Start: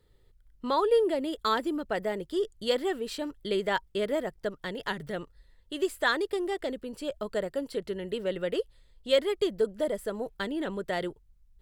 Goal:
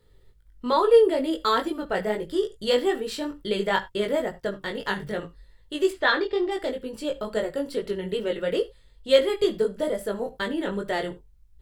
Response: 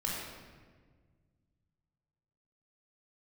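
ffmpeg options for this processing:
-filter_complex "[0:a]asplit=3[a][b][c];[a]afade=t=out:st=5.9:d=0.02[d];[b]lowpass=f=5k:w=0.5412,lowpass=f=5k:w=1.3066,afade=t=in:st=5.9:d=0.02,afade=t=out:st=6.5:d=0.02[e];[c]afade=t=in:st=6.5:d=0.02[f];[d][e][f]amix=inputs=3:normalize=0,flanger=delay=18.5:depth=2.5:speed=2.3,asplit=2[g][h];[1:a]atrim=start_sample=2205,afade=t=out:st=0.14:d=0.01,atrim=end_sample=6615[i];[h][i]afir=irnorm=-1:irlink=0,volume=-13.5dB[j];[g][j]amix=inputs=2:normalize=0,volume=6dB"

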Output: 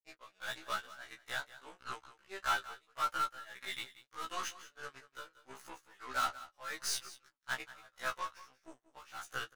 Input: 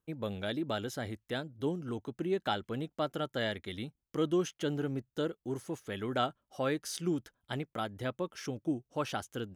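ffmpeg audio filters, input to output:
-filter_complex "[0:a]lowpass=11k,bandreject=f=3.2k:w=10,asplit=2[a][b];[b]acompressor=threshold=-42dB:ratio=6,volume=-1.5dB[c];[a][c]amix=inputs=2:normalize=0,highpass=f=1.2k:t=q:w=2.2,asoftclip=type=tanh:threshold=-31.5dB,aeval=exprs='0.0266*(cos(1*acos(clip(val(0)/0.0266,-1,1)))-cos(1*PI/2))+0.0015*(cos(2*acos(clip(val(0)/0.0266,-1,1)))-cos(2*PI/2))+0.00335*(cos(4*acos(clip(val(0)/0.0266,-1,1)))-cos(4*PI/2))+0.00075*(cos(6*acos(clip(val(0)/0.0266,-1,1)))-cos(6*PI/2))+0.00376*(cos(7*acos(clip(val(0)/0.0266,-1,1)))-cos(7*PI/2))':c=same,flanger=delay=6.9:depth=9.5:regen=-37:speed=0.28:shape=triangular,tremolo=f=1.6:d=0.95,asplit=2[d][e];[e]aecho=0:1:183:0.15[f];[d][f]amix=inputs=2:normalize=0,afftfilt=real='re*1.73*eq(mod(b,3),0)':imag='im*1.73*eq(mod(b,3),0)':win_size=2048:overlap=0.75,volume=9.5dB"

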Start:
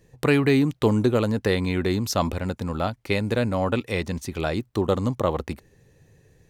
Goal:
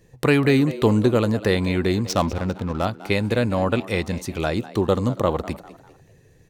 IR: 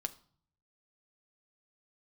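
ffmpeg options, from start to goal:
-filter_complex "[0:a]asettb=1/sr,asplit=3[a][b][c];[a]atrim=end=2.064[d];[b]atrim=start=2.06:end=2.85,asetpts=PTS-STARTPTS,afade=t=in:d=0.004:c=qsin,afade=t=out:st=0.786:d=0.004:c=qsin,adynamicsmooth=sensitivity=6:basefreq=910[e];[c]atrim=start=2.846[f];[d][e]acrossfade=d=0.004:c1=hsin:c2=qsin[g];[g][f]acrossfade=d=0.004:c1=qsin:c2=hsin,asplit=4[h][i][j][k];[i]adelay=199,afreqshift=100,volume=-17dB[l];[j]adelay=398,afreqshift=200,volume=-25.4dB[m];[k]adelay=597,afreqshift=300,volume=-33.8dB[n];[h][l][m][n]amix=inputs=4:normalize=0,asplit=2[o][p];[1:a]atrim=start_sample=2205,atrim=end_sample=3087[q];[p][q]afir=irnorm=-1:irlink=0,volume=-9.5dB[r];[o][r]amix=inputs=2:normalize=0"

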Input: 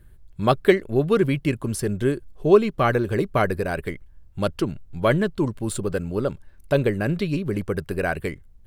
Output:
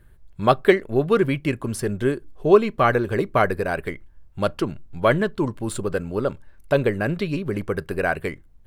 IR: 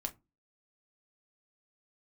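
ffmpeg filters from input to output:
-filter_complex "[0:a]equalizer=f=1.1k:w=0.41:g=5.5,asplit=2[a][b];[1:a]atrim=start_sample=2205[c];[b][c]afir=irnorm=-1:irlink=0,volume=-14dB[d];[a][d]amix=inputs=2:normalize=0,volume=-3.5dB"

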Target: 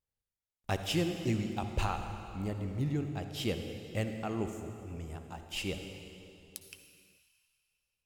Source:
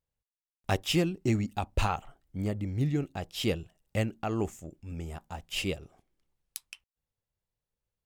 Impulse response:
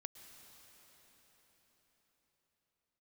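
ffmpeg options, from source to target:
-filter_complex "[1:a]atrim=start_sample=2205,asetrate=88200,aresample=44100[a];[0:a][a]afir=irnorm=-1:irlink=0,volume=7.5dB" -ar 44100 -c:a libmp3lame -b:a 112k

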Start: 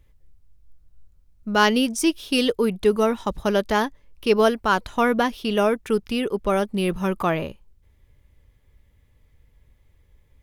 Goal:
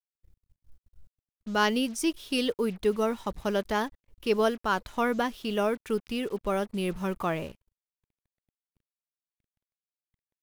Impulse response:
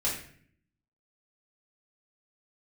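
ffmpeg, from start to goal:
-af "acrusher=bits=6:mix=0:aa=0.5,volume=-7dB"

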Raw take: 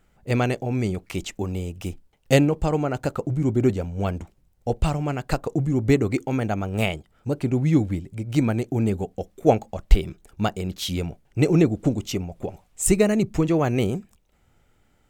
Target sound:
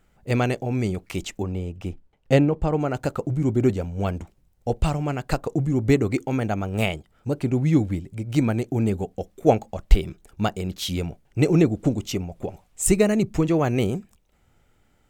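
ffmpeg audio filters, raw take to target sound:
-filter_complex "[0:a]asplit=3[a][b][c];[a]afade=t=out:st=1.42:d=0.02[d];[b]lowpass=f=2k:p=1,afade=t=in:st=1.42:d=0.02,afade=t=out:st=2.79:d=0.02[e];[c]afade=t=in:st=2.79:d=0.02[f];[d][e][f]amix=inputs=3:normalize=0"

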